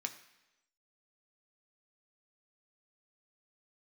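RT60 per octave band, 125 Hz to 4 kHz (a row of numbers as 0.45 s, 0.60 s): 0.85 s, 0.95 s, 1.0 s, 0.95 s, 1.0 s, 1.0 s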